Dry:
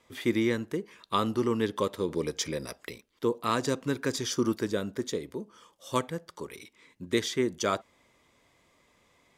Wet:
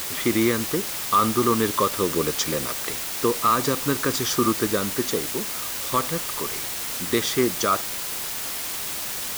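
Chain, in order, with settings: peaking EQ 1.2 kHz +12 dB 0.33 oct; peak limiter -16.5 dBFS, peak gain reduction 8 dB; word length cut 6-bit, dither triangular; trim +6 dB

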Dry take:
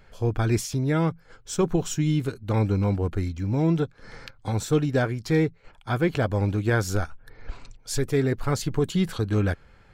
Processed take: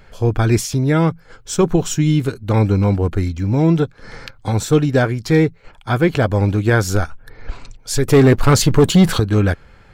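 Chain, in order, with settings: 8.08–9.20 s: waveshaping leveller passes 2; trim +8 dB

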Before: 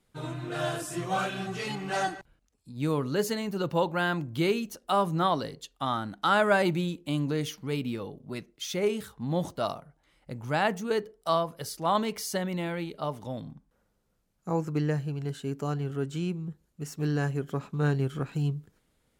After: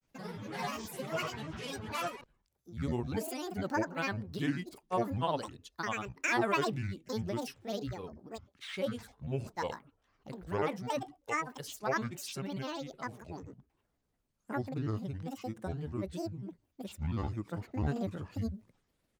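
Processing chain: granulator, spray 32 ms, pitch spread up and down by 12 st; trim -5.5 dB

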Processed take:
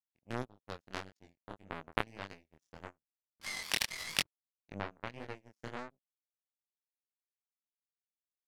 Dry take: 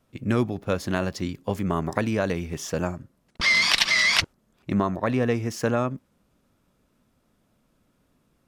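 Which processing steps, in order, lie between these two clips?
power-law waveshaper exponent 3; chorus 1.7 Hz, delay 19 ms, depth 7.6 ms; trim +2.5 dB

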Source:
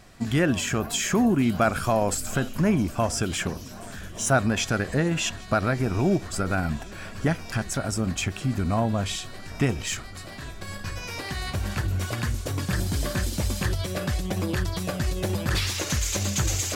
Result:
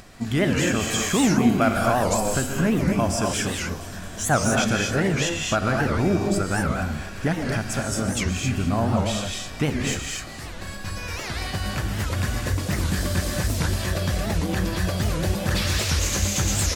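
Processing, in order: upward compressor, threshold -41 dBFS; on a send: feedback delay 222 ms, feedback 42%, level -19.5 dB; on the sum: gated-style reverb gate 280 ms rising, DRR 0 dB; warped record 78 rpm, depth 250 cents

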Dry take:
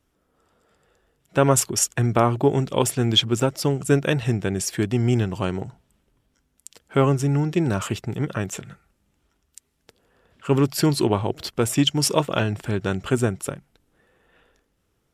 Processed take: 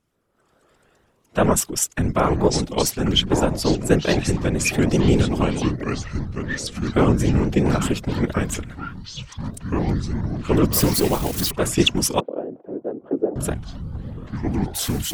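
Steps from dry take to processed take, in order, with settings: 10.73–11.51 s: zero-crossing glitches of -16.5 dBFS; level rider gain up to 7.5 dB; whisper effect; ever faster or slower copies 428 ms, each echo -5 st, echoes 3, each echo -6 dB; 12.20–13.36 s: Butterworth band-pass 430 Hz, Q 1.3; vibrato with a chosen wave saw up 4.8 Hz, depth 160 cents; trim -3 dB

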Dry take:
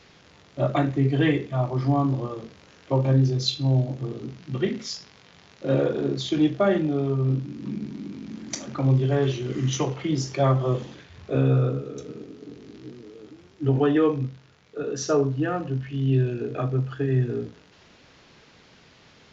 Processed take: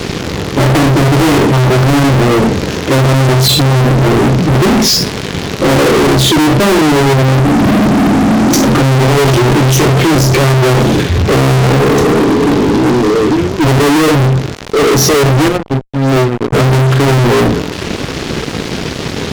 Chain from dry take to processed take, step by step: 15.48–16.53 s: power-law waveshaper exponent 3; resonant low shelf 550 Hz +7.5 dB, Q 1.5; fuzz box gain 43 dB, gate -51 dBFS; trim +5.5 dB

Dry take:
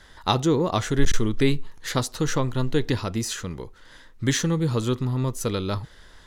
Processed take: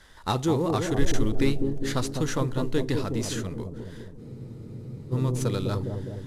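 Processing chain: CVSD coder 64 kbps; bucket-brigade echo 204 ms, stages 1024, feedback 64%, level -4 dB; spectral freeze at 4.21 s, 0.92 s; trim -3.5 dB

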